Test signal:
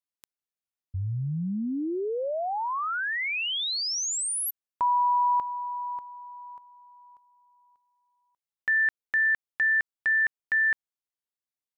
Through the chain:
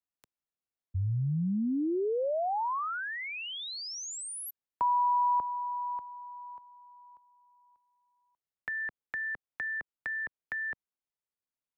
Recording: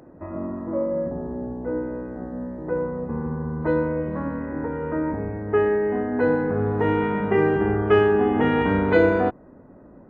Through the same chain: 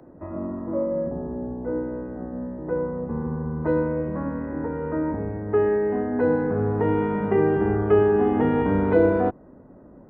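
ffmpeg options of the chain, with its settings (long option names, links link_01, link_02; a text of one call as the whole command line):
ffmpeg -i in.wav -filter_complex "[0:a]highshelf=frequency=2300:gain=-10,acrossover=split=150|420|1100[link_01][link_02][link_03][link_04];[link_04]acompressor=threshold=-38dB:ratio=6:attack=18:release=98:knee=1[link_05];[link_01][link_02][link_03][link_05]amix=inputs=4:normalize=0" out.wav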